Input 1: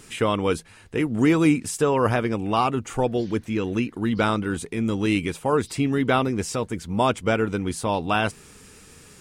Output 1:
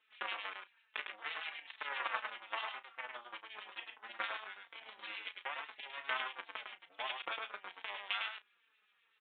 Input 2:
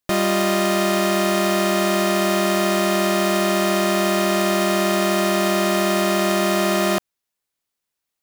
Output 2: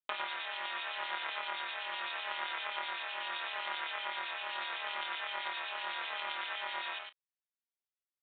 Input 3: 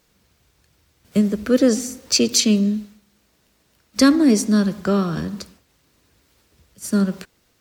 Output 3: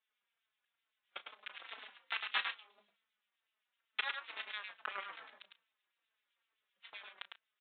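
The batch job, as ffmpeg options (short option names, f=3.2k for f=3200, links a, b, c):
-filter_complex "[0:a]afftfilt=real='re*lt(hypot(re,im),0.891)':imag='im*lt(hypot(re,im),0.891)':win_size=1024:overlap=0.75,crystalizer=i=0.5:c=0,acompressor=threshold=-28dB:ratio=2,aeval=exprs='0.531*(cos(1*acos(clip(val(0)/0.531,-1,1)))-cos(1*PI/2))+0.0299*(cos(3*acos(clip(val(0)/0.531,-1,1)))-cos(3*PI/2))+0.00596*(cos(4*acos(clip(val(0)/0.531,-1,1)))-cos(4*PI/2))+0.00944*(cos(6*acos(clip(val(0)/0.531,-1,1)))-cos(6*PI/2))+0.0668*(cos(7*acos(clip(val(0)/0.531,-1,1)))-cos(7*PI/2))':c=same,acrossover=split=2000[a][b];[a]aeval=exprs='val(0)*(1-0.7/2+0.7/2*cos(2*PI*7.8*n/s))':c=same[c];[b]aeval=exprs='val(0)*(1-0.7/2-0.7/2*cos(2*PI*7.8*n/s))':c=same[d];[c][d]amix=inputs=2:normalize=0,aeval=exprs='(tanh(28.2*val(0)+0.75)-tanh(0.75))/28.2':c=same,highpass=1.3k,asplit=2[e][f];[f]adelay=34,volume=-13.5dB[g];[e][g]amix=inputs=2:normalize=0,asplit=2[h][i];[i]aecho=0:1:104:0.562[j];[h][j]amix=inputs=2:normalize=0,aresample=8000,aresample=44100,asplit=2[k][l];[l]adelay=4,afreqshift=-2.3[m];[k][m]amix=inputs=2:normalize=1,volume=18dB"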